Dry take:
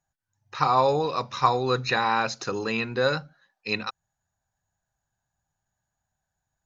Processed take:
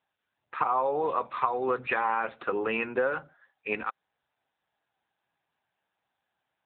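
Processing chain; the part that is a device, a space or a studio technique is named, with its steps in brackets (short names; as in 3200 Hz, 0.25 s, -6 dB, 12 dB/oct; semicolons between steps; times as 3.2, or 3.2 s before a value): voicemail (BPF 320–2700 Hz; compressor 6:1, threshold -26 dBFS, peak gain reduction 11 dB; gain +3.5 dB; AMR-NB 7.95 kbps 8000 Hz)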